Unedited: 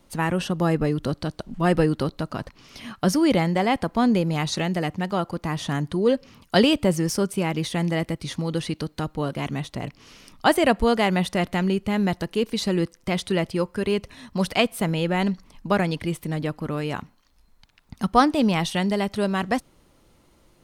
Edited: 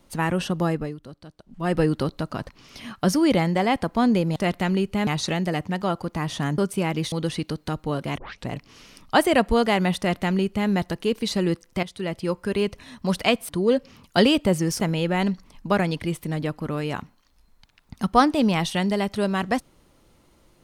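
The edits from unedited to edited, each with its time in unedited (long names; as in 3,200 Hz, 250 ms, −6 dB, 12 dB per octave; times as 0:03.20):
0:00.58–0:01.87: duck −16 dB, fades 0.41 s
0:05.87–0:07.18: move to 0:14.80
0:07.72–0:08.43: remove
0:09.49: tape start 0.29 s
0:11.29–0:12.00: duplicate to 0:04.36
0:13.14–0:13.70: fade in, from −14 dB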